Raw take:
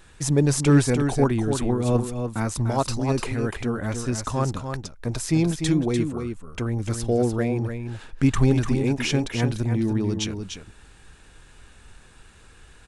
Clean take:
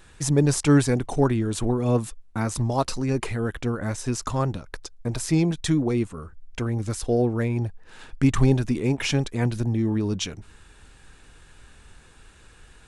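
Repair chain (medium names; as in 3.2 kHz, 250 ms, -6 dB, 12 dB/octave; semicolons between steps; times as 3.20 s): clip repair -8 dBFS; inverse comb 296 ms -7 dB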